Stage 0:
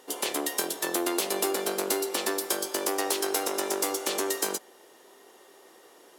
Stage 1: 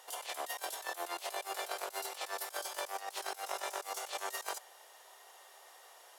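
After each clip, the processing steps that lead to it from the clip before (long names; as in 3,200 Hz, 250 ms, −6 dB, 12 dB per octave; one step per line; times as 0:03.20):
Chebyshev high-pass filter 670 Hz, order 3
compressor whose output falls as the input rises −36 dBFS, ratio −0.5
level −4.5 dB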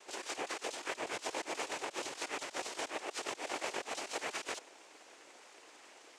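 cochlear-implant simulation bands 4
level +1 dB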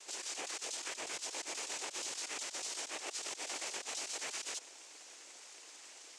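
parametric band 6,900 Hz +14.5 dB 2.3 octaves
brickwall limiter −26 dBFS, peak gain reduction 9.5 dB
level −5 dB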